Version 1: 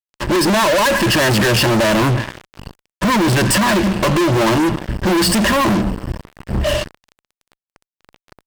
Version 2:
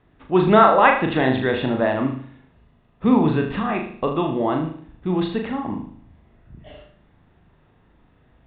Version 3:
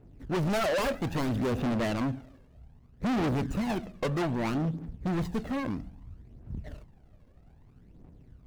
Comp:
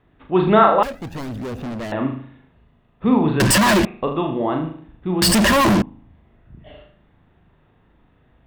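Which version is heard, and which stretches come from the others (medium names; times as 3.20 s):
2
0.83–1.92 s: from 3
3.40–3.85 s: from 1
5.22–5.82 s: from 1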